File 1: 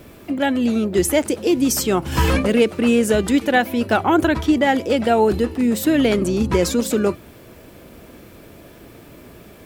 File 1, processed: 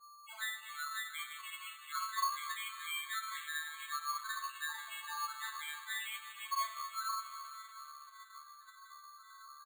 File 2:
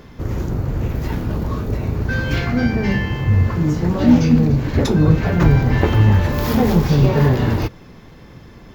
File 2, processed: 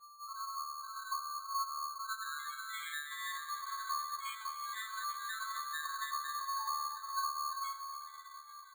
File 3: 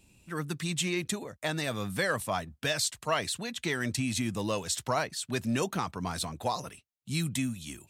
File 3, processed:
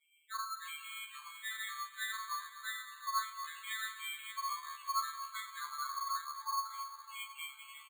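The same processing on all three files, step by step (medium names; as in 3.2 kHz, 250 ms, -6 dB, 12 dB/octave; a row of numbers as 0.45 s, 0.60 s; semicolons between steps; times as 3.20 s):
vocoder on a broken chord bare fifth, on D3, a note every 278 ms; elliptic high-pass 1.1 kHz, stop band 80 dB; treble shelf 6.3 kHz +3 dB; compression 12:1, threshold -46 dBFS; loudest bins only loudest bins 2; delay 835 ms -22.5 dB; two-slope reverb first 0.41 s, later 4.2 s, from -18 dB, DRR -6.5 dB; careless resampling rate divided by 8×, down filtered, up hold; trim +12.5 dB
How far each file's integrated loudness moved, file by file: -22.0 LU, -22.0 LU, -8.5 LU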